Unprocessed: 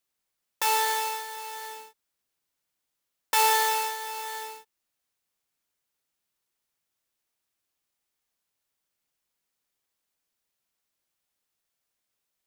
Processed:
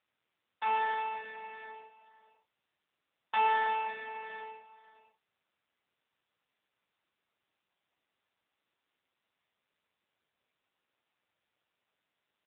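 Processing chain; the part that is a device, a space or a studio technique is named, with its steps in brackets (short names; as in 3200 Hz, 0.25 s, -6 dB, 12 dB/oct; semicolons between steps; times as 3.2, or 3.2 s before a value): HPF 200 Hz 24 dB/oct; satellite phone (BPF 390–3300 Hz; echo 0.53 s -14.5 dB; gain -3 dB; AMR-NB 6.7 kbps 8000 Hz)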